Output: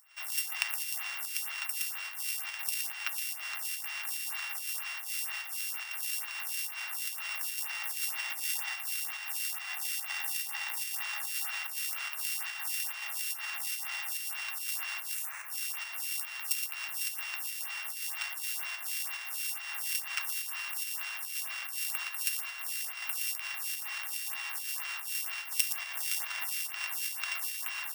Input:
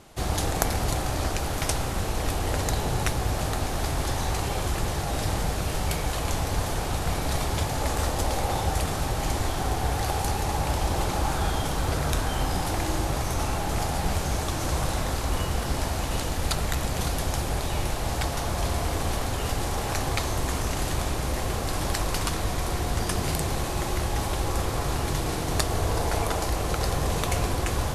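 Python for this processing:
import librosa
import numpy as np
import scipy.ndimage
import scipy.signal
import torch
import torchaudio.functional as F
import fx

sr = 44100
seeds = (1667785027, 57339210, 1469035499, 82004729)

p1 = np.r_[np.sort(x[:len(x) // 16 * 16].reshape(-1, 16), axis=1).ravel(), x[len(x) // 16 * 16:]]
p2 = fx.spec_box(p1, sr, start_s=15.14, length_s=0.35, low_hz=2700.0, high_hz=5700.0, gain_db=-14)
p3 = p2 + 10.0 ** (-7.5 / 20.0) * np.pad(p2, (int(118 * sr / 1000.0), 0))[:len(p2)]
p4 = fx.volume_shaper(p3, sr, bpm=144, per_beat=1, depth_db=-14, release_ms=99.0, shape='slow start')
p5 = p3 + F.gain(torch.from_numpy(p4), -0.5).numpy()
p6 = scipy.signal.sosfilt(scipy.signal.butter(4, 1200.0, 'highpass', fs=sr, output='sos'), p5)
p7 = fx.high_shelf(p6, sr, hz=4700.0, db=9.0)
p8 = fx.stagger_phaser(p7, sr, hz=2.1)
y = F.gain(torch.from_numpy(p8), -10.0).numpy()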